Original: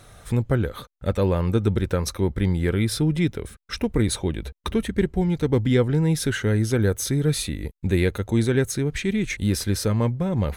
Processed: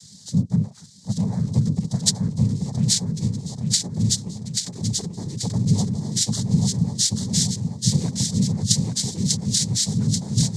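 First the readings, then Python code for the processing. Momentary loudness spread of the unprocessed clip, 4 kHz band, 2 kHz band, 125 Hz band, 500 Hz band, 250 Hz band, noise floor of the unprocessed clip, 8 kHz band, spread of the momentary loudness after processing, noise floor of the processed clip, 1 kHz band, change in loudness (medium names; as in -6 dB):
6 LU, +8.5 dB, -15.0 dB, +1.0 dB, -15.5 dB, -0.5 dB, -50 dBFS, +10.5 dB, 6 LU, -46 dBFS, -8.0 dB, +1.0 dB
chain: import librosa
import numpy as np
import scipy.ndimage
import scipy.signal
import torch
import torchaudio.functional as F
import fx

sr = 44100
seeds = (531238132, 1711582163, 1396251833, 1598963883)

p1 = fx.curve_eq(x, sr, hz=(130.0, 190.0, 450.0, 3100.0, 5200.0), db=(0, -22, -20, -28, 10))
p2 = fx.filter_lfo_notch(p1, sr, shape='saw_up', hz=3.6, low_hz=340.0, high_hz=4800.0, q=1.3)
p3 = fx.noise_vocoder(p2, sr, seeds[0], bands=6)
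p4 = fx.rider(p3, sr, range_db=5, speed_s=0.5)
p5 = p4 + fx.echo_feedback(p4, sr, ms=835, feedback_pct=45, wet_db=-4, dry=0)
y = p5 * librosa.db_to_amplitude(4.0)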